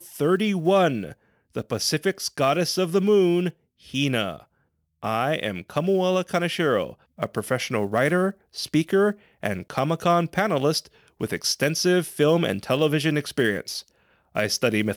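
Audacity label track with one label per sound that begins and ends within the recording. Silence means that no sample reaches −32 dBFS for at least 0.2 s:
1.560000	3.500000	sound
3.940000	4.360000	sound
5.030000	6.900000	sound
7.190000	8.310000	sound
8.570000	9.120000	sound
9.430000	10.860000	sound
11.210000	13.810000	sound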